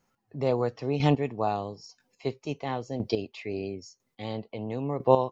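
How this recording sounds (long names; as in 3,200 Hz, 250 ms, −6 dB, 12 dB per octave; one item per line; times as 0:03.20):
chopped level 1 Hz, depth 65%, duty 15%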